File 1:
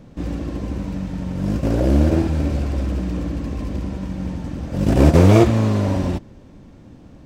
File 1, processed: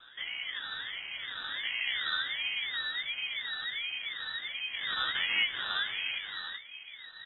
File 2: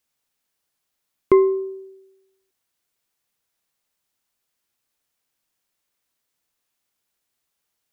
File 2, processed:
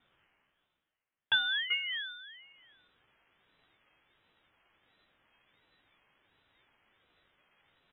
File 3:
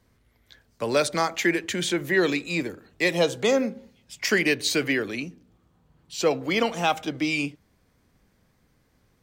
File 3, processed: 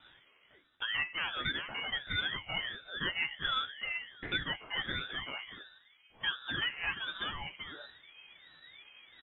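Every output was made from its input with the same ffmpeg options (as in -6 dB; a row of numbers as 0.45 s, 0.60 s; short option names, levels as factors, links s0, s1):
-filter_complex "[0:a]acrossover=split=310[s0][s1];[s0]asoftclip=type=tanh:threshold=0.0891[s2];[s2][s1]amix=inputs=2:normalize=0,asubboost=boost=10:cutoff=91,flanger=delay=9.5:depth=2.4:regen=33:speed=1.4:shape=triangular,lowshelf=f=250:t=q:w=3:g=-11,areverse,acompressor=mode=upward:threshold=0.00891:ratio=2.5,areverse,asplit=2[s3][s4];[s4]adelay=15,volume=0.562[s5];[s3][s5]amix=inputs=2:normalize=0,asplit=2[s6][s7];[s7]adelay=384.8,volume=0.398,highshelf=f=4000:g=-8.66[s8];[s6][s8]amix=inputs=2:normalize=0,acompressor=threshold=0.0251:ratio=2,lowpass=f=2500:t=q:w=0.5098,lowpass=f=2500:t=q:w=0.6013,lowpass=f=2500:t=q:w=0.9,lowpass=f=2500:t=q:w=2.563,afreqshift=-2900,aeval=exprs='val(0)*sin(2*PI*690*n/s+690*0.55/1.4*sin(2*PI*1.4*n/s))':c=same,volume=0.841"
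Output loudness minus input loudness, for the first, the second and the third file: -13.0 LU, -12.0 LU, -10.5 LU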